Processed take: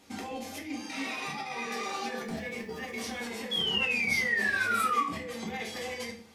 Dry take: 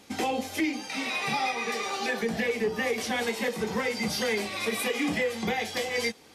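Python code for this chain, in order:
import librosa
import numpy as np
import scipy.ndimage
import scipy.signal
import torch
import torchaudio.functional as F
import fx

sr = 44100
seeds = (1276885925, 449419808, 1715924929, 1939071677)

y = fx.over_compress(x, sr, threshold_db=-30.0, ratio=-0.5)
y = fx.quant_dither(y, sr, seeds[0], bits=10, dither='none', at=(2.23, 3.25))
y = fx.spec_paint(y, sr, seeds[1], shape='fall', start_s=3.51, length_s=1.55, low_hz=1100.0, high_hz=3400.0, level_db=-23.0)
y = fx.room_shoebox(y, sr, seeds[2], volume_m3=52.0, walls='mixed', distance_m=0.58)
y = F.gain(torch.from_numpy(y), -8.5).numpy()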